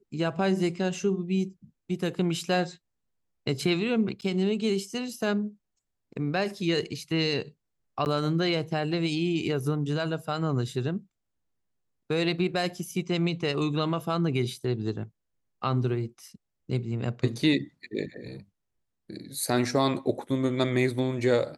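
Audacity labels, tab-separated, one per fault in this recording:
4.210000	4.220000	dropout 9.5 ms
8.050000	8.060000	dropout 9.8 ms

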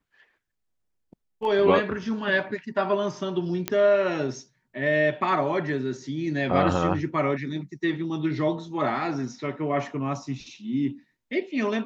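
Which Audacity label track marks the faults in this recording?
3.680000	3.680000	pop -9 dBFS

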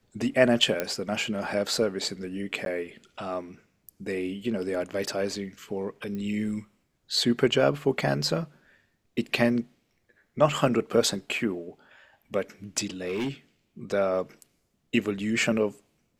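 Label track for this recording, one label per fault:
0.800000	0.800000	pop -12 dBFS
2.650000	2.660000	dropout
6.150000	6.150000	pop -25 dBFS
13.030000	13.290000	clipped -25.5 dBFS

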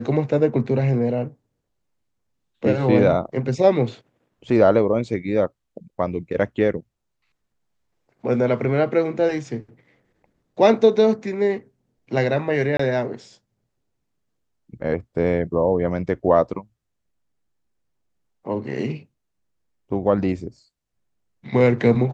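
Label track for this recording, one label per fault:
12.770000	12.790000	dropout 24 ms

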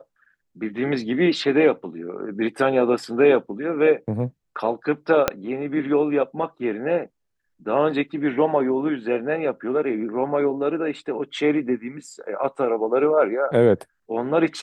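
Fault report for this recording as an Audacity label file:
5.280000	5.280000	pop -3 dBFS

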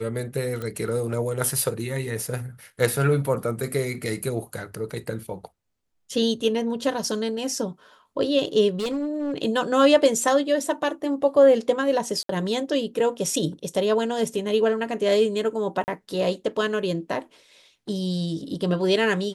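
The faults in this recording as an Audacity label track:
0.620000	0.620000	pop -19 dBFS
8.700000	9.380000	clipped -22.5 dBFS
12.230000	12.290000	dropout 63 ms
15.840000	15.880000	dropout 39 ms

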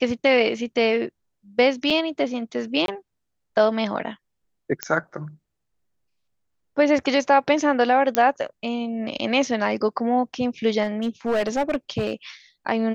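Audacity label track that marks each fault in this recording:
1.900000	1.910000	dropout 5.8 ms
2.860000	2.880000	dropout 22 ms
4.830000	4.830000	pop -7 dBFS
8.150000	8.150000	pop -4 dBFS
10.830000	12.140000	clipped -18 dBFS

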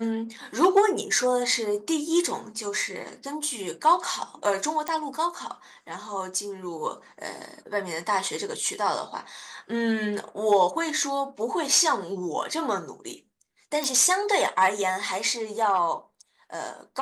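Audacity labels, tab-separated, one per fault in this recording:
4.880000	4.880000	pop -15 dBFS
13.840000	13.840000	pop

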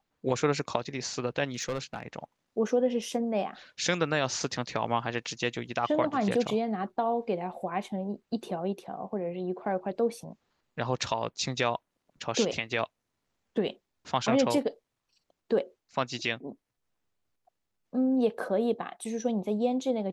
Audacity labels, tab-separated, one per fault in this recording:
1.520000	2.030000	clipped -27 dBFS

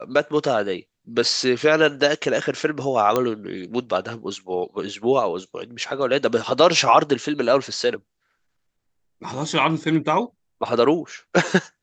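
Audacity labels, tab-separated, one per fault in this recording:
3.160000	3.160000	pop -7 dBFS

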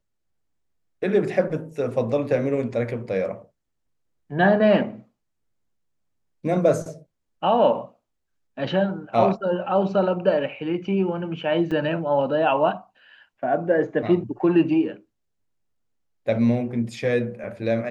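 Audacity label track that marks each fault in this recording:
11.710000	11.720000	dropout 5.5 ms

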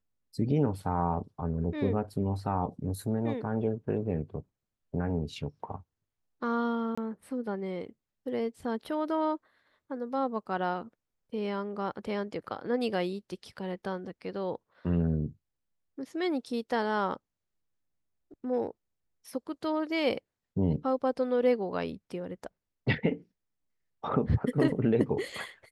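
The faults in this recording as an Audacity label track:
6.950000	6.970000	dropout 25 ms

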